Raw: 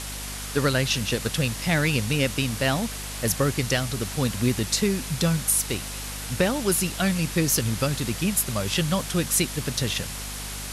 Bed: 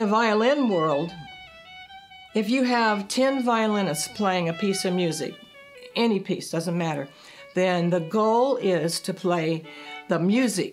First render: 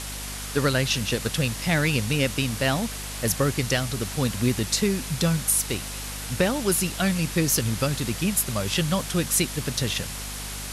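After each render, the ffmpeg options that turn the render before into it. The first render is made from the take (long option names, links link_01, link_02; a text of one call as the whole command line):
ffmpeg -i in.wav -af anull out.wav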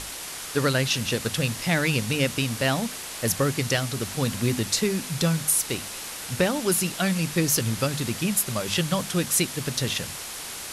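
ffmpeg -i in.wav -af "bandreject=frequency=50:width_type=h:width=6,bandreject=frequency=100:width_type=h:width=6,bandreject=frequency=150:width_type=h:width=6,bandreject=frequency=200:width_type=h:width=6,bandreject=frequency=250:width_type=h:width=6" out.wav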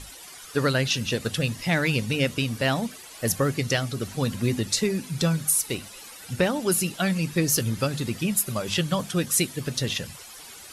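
ffmpeg -i in.wav -af "afftdn=noise_reduction=13:noise_floor=-36" out.wav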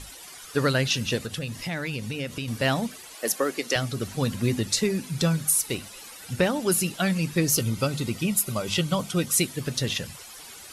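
ffmpeg -i in.wav -filter_complex "[0:a]asettb=1/sr,asplit=3[link_01][link_02][link_03];[link_01]atrim=end=1.194[link_04];[link_02]atrim=start=1.19:end=2.48,asetpts=PTS-STARTPTS,afade=type=in:duration=0.004:curve=qsin,afade=type=out:start_time=1.286:duration=0.004:curve=qsin,acompressor=threshold=-30dB:ratio=2.5:attack=3.2:release=140:knee=1:detection=peak[link_05];[link_03]atrim=start=2.476[link_06];[link_04][link_05]acrossfade=duration=0.004:curve1=hsin:curve2=qsin[link_07];[link_07][link_06]acrossfade=duration=0.004:curve1=qsin:curve2=hsin,asettb=1/sr,asplit=3[link_08][link_09][link_10];[link_08]atrim=end=3.154[link_11];[link_09]atrim=start=3.15:end=3.76,asetpts=PTS-STARTPTS,afade=type=in:duration=0.004:curve=qsin,afade=type=out:start_time=0.606:duration=0.004:curve=qsin,highpass=frequency=280:width=0.5412,highpass=frequency=280:width=1.3066[link_12];[link_10]atrim=start=3.756[link_13];[link_11][link_12]acrossfade=duration=0.004:curve1=hsin:curve2=qsin[link_14];[link_14][link_13]acrossfade=duration=0.004:curve1=qsin:curve2=hsin,asettb=1/sr,asplit=3[link_15][link_16][link_17];[link_15]atrim=end=7.504[link_18];[link_16]atrim=start=7.5:end=9.43,asetpts=PTS-STARTPTS,afade=type=in:duration=0.004:curve=qsin,afade=type=out:start_time=1.926:duration=0.004:curve=qsin,asuperstop=centerf=1700:order=20:qfactor=7.4[link_19];[link_17]atrim=start=9.426[link_20];[link_18][link_19]acrossfade=duration=0.004:curve1=hsin:curve2=qsin[link_21];[link_21][link_20]acrossfade=duration=0.004:curve1=qsin:curve2=hsin" out.wav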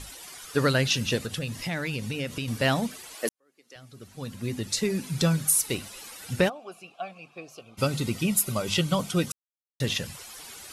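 ffmpeg -i in.wav -filter_complex "[0:a]asplit=3[link_01][link_02][link_03];[link_01]afade=type=out:start_time=6.48:duration=0.02[link_04];[link_02]asplit=3[link_05][link_06][link_07];[link_05]bandpass=frequency=730:width_type=q:width=8,volume=0dB[link_08];[link_06]bandpass=frequency=1090:width_type=q:width=8,volume=-6dB[link_09];[link_07]bandpass=frequency=2440:width_type=q:width=8,volume=-9dB[link_10];[link_08][link_09][link_10]amix=inputs=3:normalize=0,afade=type=in:start_time=6.48:duration=0.02,afade=type=out:start_time=7.77:duration=0.02[link_11];[link_03]afade=type=in:start_time=7.77:duration=0.02[link_12];[link_04][link_11][link_12]amix=inputs=3:normalize=0,asplit=4[link_13][link_14][link_15][link_16];[link_13]atrim=end=3.29,asetpts=PTS-STARTPTS,afade=type=out:start_time=3.286:duration=0.004:curve=hsin[link_17];[link_14]atrim=start=3.29:end=9.32,asetpts=PTS-STARTPTS,afade=type=in:duration=1.79:curve=qua,afade=type=out:start_time=6.026:duration=0.004:curve=hsin[link_18];[link_15]atrim=start=9.32:end=9.8,asetpts=PTS-STARTPTS,volume=0[link_19];[link_16]atrim=start=9.8,asetpts=PTS-STARTPTS,afade=type=in:duration=0.004:curve=hsin[link_20];[link_17][link_18][link_19][link_20]concat=n=4:v=0:a=1" out.wav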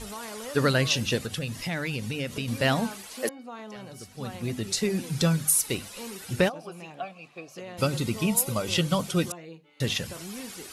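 ffmpeg -i in.wav -i bed.wav -filter_complex "[1:a]volume=-19dB[link_01];[0:a][link_01]amix=inputs=2:normalize=0" out.wav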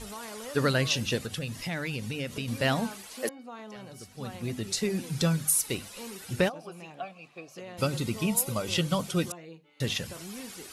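ffmpeg -i in.wav -af "volume=-2.5dB" out.wav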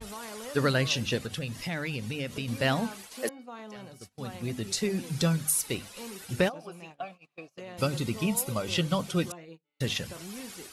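ffmpeg -i in.wav -af "agate=range=-23dB:threshold=-45dB:ratio=16:detection=peak,adynamicequalizer=threshold=0.00562:dfrequency=5400:dqfactor=0.7:tfrequency=5400:tqfactor=0.7:attack=5:release=100:ratio=0.375:range=2.5:mode=cutabove:tftype=highshelf" out.wav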